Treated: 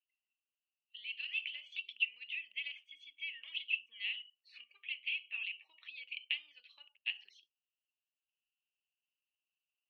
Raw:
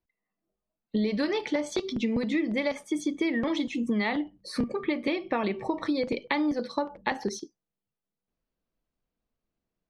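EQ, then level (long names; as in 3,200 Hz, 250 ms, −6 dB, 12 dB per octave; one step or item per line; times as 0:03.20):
flat-topped band-pass 2,800 Hz, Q 7.6
+11.0 dB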